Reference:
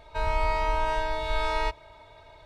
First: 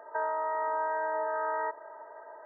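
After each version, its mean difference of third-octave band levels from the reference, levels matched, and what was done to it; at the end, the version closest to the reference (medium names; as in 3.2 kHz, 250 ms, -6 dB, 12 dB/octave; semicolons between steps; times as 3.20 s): 11.5 dB: high-pass 380 Hz 24 dB/octave; peak limiter -28 dBFS, peak gain reduction 10 dB; brick-wall FIR low-pass 2 kHz; trim +5.5 dB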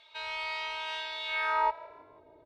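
8.5 dB: band-pass sweep 3.3 kHz -> 330 Hz, 1.24–2.02 s; on a send: frequency-shifting echo 161 ms, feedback 47%, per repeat +37 Hz, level -22.5 dB; on the sum: trim +6 dB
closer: second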